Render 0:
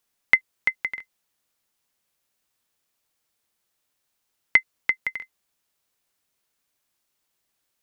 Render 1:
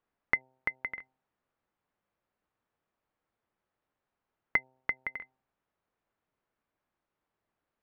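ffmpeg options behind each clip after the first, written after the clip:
-filter_complex "[0:a]lowpass=1.4k,bandreject=f=130:t=h:w=4,bandreject=f=260:t=h:w=4,bandreject=f=390:t=h:w=4,bandreject=f=520:t=h:w=4,bandreject=f=650:t=h:w=4,bandreject=f=780:t=h:w=4,bandreject=f=910:t=h:w=4,asplit=2[a][b];[b]acompressor=threshold=-34dB:ratio=6,volume=-1dB[c];[a][c]amix=inputs=2:normalize=0,volume=-4.5dB"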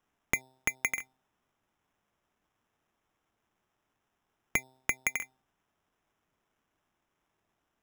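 -filter_complex "[0:a]equalizer=f=520:t=o:w=0.29:g=-7.5,acrossover=split=590[a][b];[b]alimiter=limit=-21dB:level=0:latency=1:release=71[c];[a][c]amix=inputs=2:normalize=0,acrusher=samples=10:mix=1:aa=0.000001,volume=6.5dB"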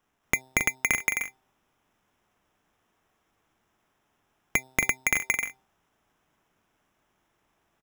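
-af "aecho=1:1:233.2|274.1:1|0.501,volume=4dB"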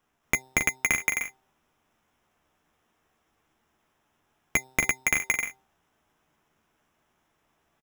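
-filter_complex "[0:a]asplit=2[a][b];[b]adelay=13,volume=-8dB[c];[a][c]amix=inputs=2:normalize=0"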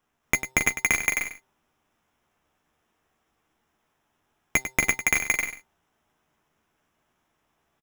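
-filter_complex "[0:a]asplit=2[a][b];[b]acrusher=bits=5:dc=4:mix=0:aa=0.000001,volume=-6.5dB[c];[a][c]amix=inputs=2:normalize=0,aecho=1:1:98:0.282,volume=-1.5dB"

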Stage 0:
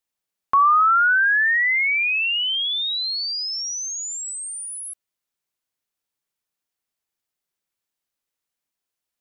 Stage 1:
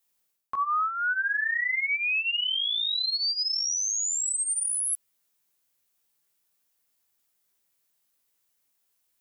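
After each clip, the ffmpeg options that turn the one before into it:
-af "highshelf=f=8.4k:g=10.5,flanger=delay=15.5:depth=3:speed=0.84,areverse,acompressor=threshold=-33dB:ratio=8,areverse,volume=7.5dB"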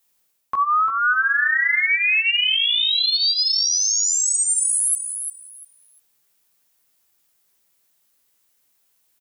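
-af "aecho=1:1:348|696|1044:0.398|0.0836|0.0176,volume=7.5dB"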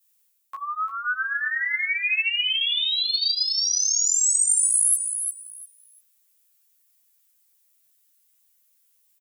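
-filter_complex "[0:a]acrossover=split=5800[a][b];[a]bandpass=f=3k:t=q:w=0.69:csg=0[c];[b]acontrast=56[d];[c][d]amix=inputs=2:normalize=0,asplit=2[e][f];[f]adelay=11,afreqshift=0.85[g];[e][g]amix=inputs=2:normalize=1,volume=-2dB"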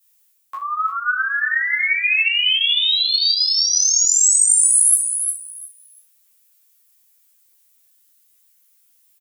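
-af "aecho=1:1:24|65:0.596|0.316,volume=4.5dB"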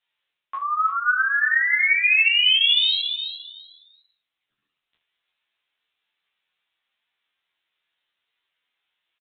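-af "aresample=8000,aresample=44100"

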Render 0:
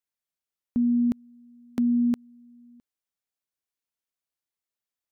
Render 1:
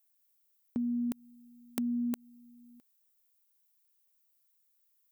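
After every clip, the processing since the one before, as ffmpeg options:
-af "aemphasis=mode=production:type=bsi,acompressor=threshold=-31dB:ratio=4"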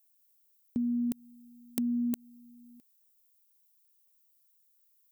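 -af "equalizer=f=1.1k:t=o:w=2.2:g=-12.5,volume=4dB"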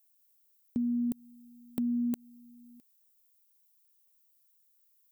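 -af "asoftclip=type=hard:threshold=-21dB"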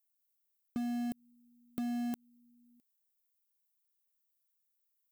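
-filter_complex "[0:a]aeval=exprs='0.0944*(cos(1*acos(clip(val(0)/0.0944,-1,1)))-cos(1*PI/2))+0.00596*(cos(3*acos(clip(val(0)/0.0944,-1,1)))-cos(3*PI/2))+0.00211*(cos(5*acos(clip(val(0)/0.0944,-1,1)))-cos(5*PI/2))+0.00422*(cos(7*acos(clip(val(0)/0.0944,-1,1)))-cos(7*PI/2))':c=same,asplit=2[a][b];[b]acrusher=bits=4:mix=0:aa=0.000001,volume=-11dB[c];[a][c]amix=inputs=2:normalize=0,volume=-7dB"

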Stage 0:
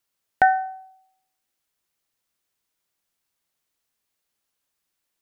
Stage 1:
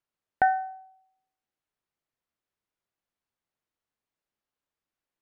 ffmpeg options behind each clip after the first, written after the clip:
-af "lowpass=f=1.5k:p=1,volume=-4dB"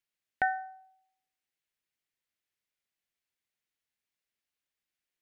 -af "highshelf=f=1.5k:t=q:w=1.5:g=7.5,volume=-6.5dB"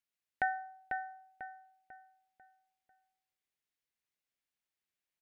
-filter_complex "[0:a]asplit=2[a][b];[b]adelay=495,lowpass=f=2.8k:p=1,volume=-4.5dB,asplit=2[c][d];[d]adelay=495,lowpass=f=2.8k:p=1,volume=0.39,asplit=2[e][f];[f]adelay=495,lowpass=f=2.8k:p=1,volume=0.39,asplit=2[g][h];[h]adelay=495,lowpass=f=2.8k:p=1,volume=0.39,asplit=2[i][j];[j]adelay=495,lowpass=f=2.8k:p=1,volume=0.39[k];[a][c][e][g][i][k]amix=inputs=6:normalize=0,volume=-4dB"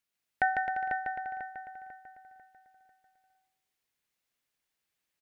-af "aecho=1:1:150|262.5|346.9|410.2|457.6:0.631|0.398|0.251|0.158|0.1,volume=5dB"

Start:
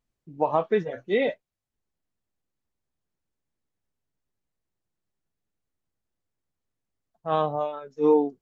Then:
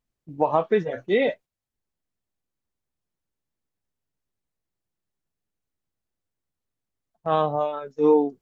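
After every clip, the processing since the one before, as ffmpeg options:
-filter_complex "[0:a]agate=range=-7dB:threshold=-45dB:ratio=16:detection=peak,asplit=2[a][b];[b]acompressor=threshold=-29dB:ratio=6,volume=-1dB[c];[a][c]amix=inputs=2:normalize=0"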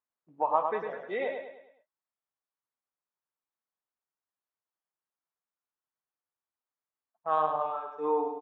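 -af "bandpass=f=1.1k:t=q:w=1.7:csg=0,aecho=1:1:103|206|309|412|515:0.531|0.228|0.0982|0.0422|0.0181,volume=-1.5dB"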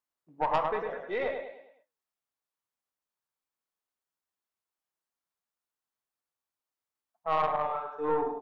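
-af "aeval=exprs='(tanh(11.2*val(0)+0.4)-tanh(0.4))/11.2':c=same,flanger=delay=7.7:depth=8.3:regen=-83:speed=1.1:shape=triangular,volume=7dB"

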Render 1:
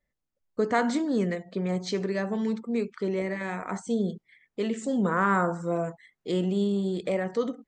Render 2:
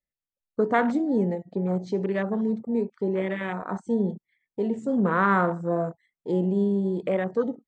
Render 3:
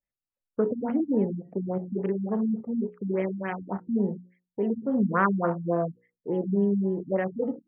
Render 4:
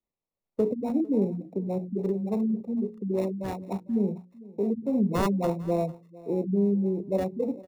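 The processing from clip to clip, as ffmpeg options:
-af "afwtdn=0.0178,volume=2.5dB"
-af "bandreject=f=60:t=h:w=6,bandreject=f=120:t=h:w=6,bandreject=f=180:t=h:w=6,bandreject=f=240:t=h:w=6,bandreject=f=300:t=h:w=6,bandreject=f=360:t=h:w=6,bandreject=f=420:t=h:w=6,bandreject=f=480:t=h:w=6,bandreject=f=540:t=h:w=6,afftfilt=real='re*lt(b*sr/1024,260*pow(3300/260,0.5+0.5*sin(2*PI*3.5*pts/sr)))':imag='im*lt(b*sr/1024,260*pow(3300/260,0.5+0.5*sin(2*PI*3.5*pts/sr)))':win_size=1024:overlap=0.75"
-filter_complex "[0:a]acrossover=split=160|340|1100[a][b][c][d];[d]acrusher=samples=28:mix=1:aa=0.000001[e];[a][b][c][e]amix=inputs=4:normalize=0,aecho=1:1:450:0.0891"

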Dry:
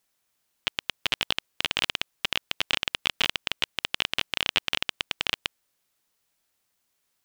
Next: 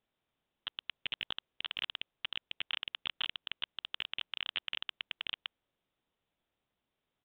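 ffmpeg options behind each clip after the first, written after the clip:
-af "equalizer=f=1.9k:w=0.56:g=-9,aresample=8000,aeval=exprs='clip(val(0),-1,0.0501)':c=same,aresample=44100,volume=1dB"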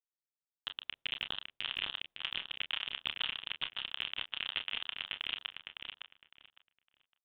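-filter_complex "[0:a]asplit=2[a][b];[b]aecho=0:1:30|42:0.376|0.188[c];[a][c]amix=inputs=2:normalize=0,agate=range=-33dB:threshold=-50dB:ratio=3:detection=peak,asplit=2[d][e];[e]adelay=558,lowpass=f=3.6k:p=1,volume=-4.5dB,asplit=2[f][g];[g]adelay=558,lowpass=f=3.6k:p=1,volume=0.22,asplit=2[h][i];[i]adelay=558,lowpass=f=3.6k:p=1,volume=0.22[j];[f][h][j]amix=inputs=3:normalize=0[k];[d][k]amix=inputs=2:normalize=0"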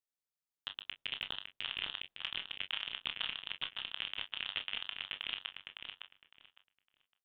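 -filter_complex "[0:a]asplit=2[a][b];[b]adelay=20,volume=-12dB[c];[a][c]amix=inputs=2:normalize=0,volume=-2dB"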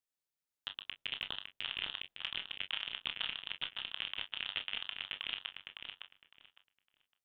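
-af "bandreject=f=1.1k:w=17"

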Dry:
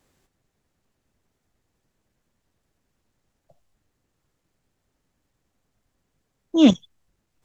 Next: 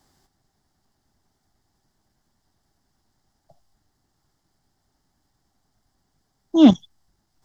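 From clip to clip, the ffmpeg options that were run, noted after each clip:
-filter_complex "[0:a]acrossover=split=3600[a][b];[b]acompressor=threshold=-46dB:ratio=4:attack=1:release=60[c];[a][c]amix=inputs=2:normalize=0,equalizer=f=500:t=o:w=0.33:g=-10,equalizer=f=800:t=o:w=0.33:g=7,equalizer=f=2.5k:t=o:w=0.33:g=-11,equalizer=f=5k:t=o:w=0.33:g=8,volume=3dB"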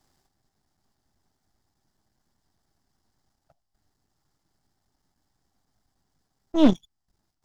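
-af "aeval=exprs='if(lt(val(0),0),0.251*val(0),val(0))':c=same,volume=-2.5dB"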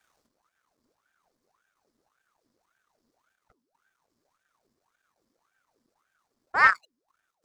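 -af "aeval=exprs='val(0)*sin(2*PI*900*n/s+900*0.75/1.8*sin(2*PI*1.8*n/s))':c=same"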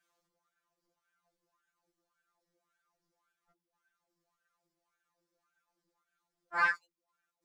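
-af "afftfilt=real='re*2.83*eq(mod(b,8),0)':imag='im*2.83*eq(mod(b,8),0)':win_size=2048:overlap=0.75,volume=-5.5dB"

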